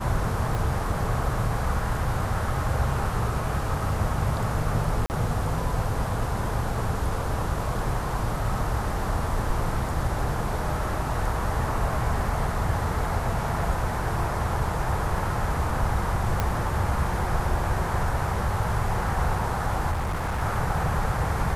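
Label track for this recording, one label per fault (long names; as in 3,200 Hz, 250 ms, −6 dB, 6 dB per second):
0.550000	0.550000	click
5.060000	5.100000	drop-out 39 ms
16.400000	16.400000	click −10 dBFS
19.910000	20.420000	clipping −24 dBFS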